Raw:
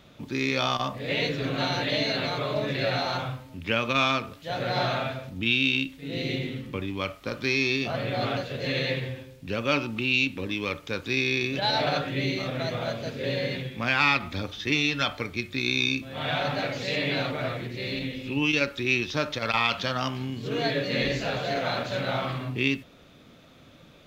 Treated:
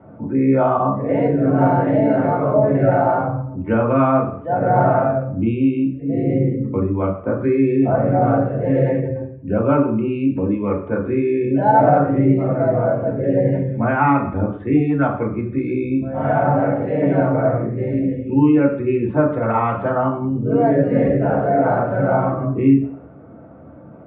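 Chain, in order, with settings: spectral gate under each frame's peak -25 dB strong; LPF 1100 Hz 24 dB/oct; reverb RT60 0.55 s, pre-delay 3 ms, DRR -1.5 dB

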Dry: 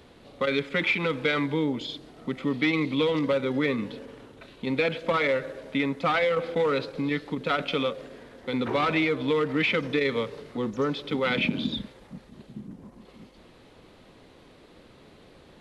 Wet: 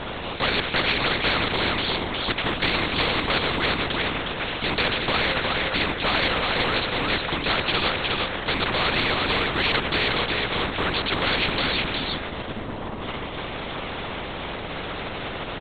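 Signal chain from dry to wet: LPC vocoder at 8 kHz whisper; echo 0.361 s -7.5 dB; spectral compressor 4:1; gain +2 dB

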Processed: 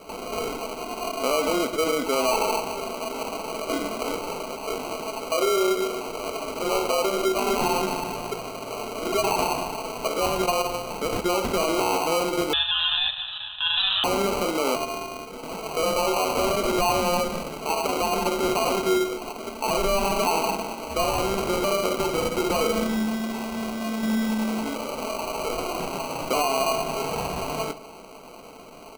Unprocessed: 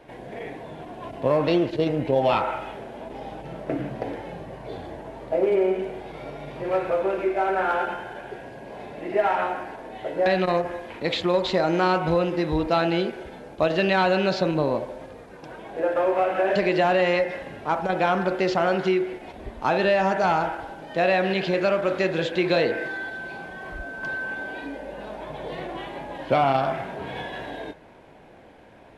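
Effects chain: 14.75–15.26 sample sorter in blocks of 64 samples; HPF 270 Hz 24 dB/oct; comb 4.5 ms, depth 49%; in parallel at -0.5 dB: compressor, threshold -31 dBFS, peak gain reduction 16 dB; on the sum: limiter -15.5 dBFS, peak gain reduction 9.5 dB; sample-and-hold 25×; on a send at -12 dB: reverb RT60 0.95 s, pre-delay 3 ms; 12.53–14.04 on the sum: inverted band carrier 3900 Hz

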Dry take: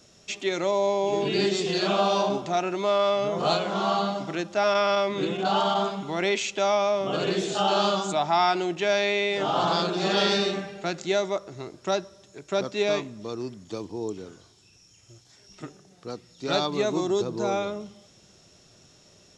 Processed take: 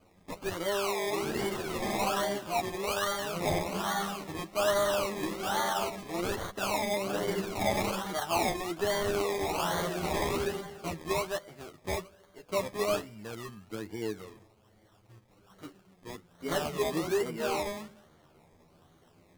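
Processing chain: decimation with a swept rate 24×, swing 60% 1.2 Hz; chorus voices 2, 0.14 Hz, delay 11 ms, depth 2 ms; gain -3.5 dB

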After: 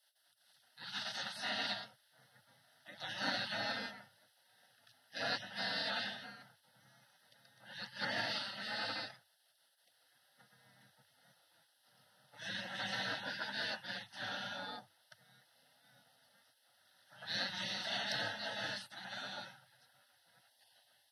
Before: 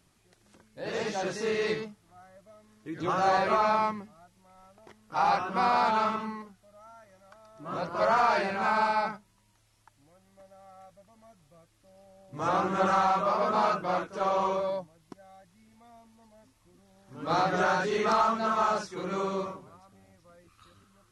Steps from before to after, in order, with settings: spectral gate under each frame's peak -20 dB weak; fixed phaser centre 1500 Hz, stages 8; frequency shift +95 Hz; gain +4 dB

